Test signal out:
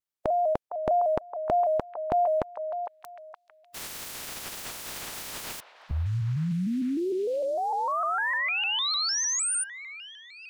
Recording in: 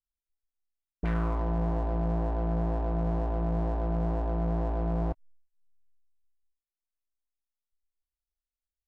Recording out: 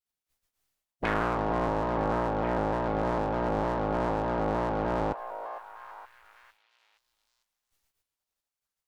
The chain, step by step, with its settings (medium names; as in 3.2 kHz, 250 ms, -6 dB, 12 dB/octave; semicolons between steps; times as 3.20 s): spectral peaks clipped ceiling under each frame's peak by 24 dB; repeats whose band climbs or falls 462 ms, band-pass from 770 Hz, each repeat 0.7 oct, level -7 dB; vibrato with a chosen wave square 3.3 Hz, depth 100 cents